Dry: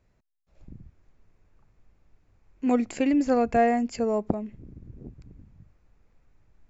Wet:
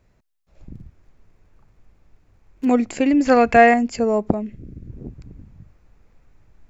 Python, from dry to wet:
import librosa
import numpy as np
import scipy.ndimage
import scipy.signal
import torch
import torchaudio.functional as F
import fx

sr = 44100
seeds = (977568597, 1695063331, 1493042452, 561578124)

y = fx.dead_time(x, sr, dead_ms=0.11, at=(0.74, 2.65))
y = fx.peak_eq(y, sr, hz=920.0, db=-11.5, octaves=0.6, at=(4.42, 4.9))
y = fx.rider(y, sr, range_db=10, speed_s=2.0)
y = fx.peak_eq(y, sr, hz=2300.0, db=10.5, octaves=2.6, at=(3.25, 3.74))
y = F.gain(torch.from_numpy(y), 6.0).numpy()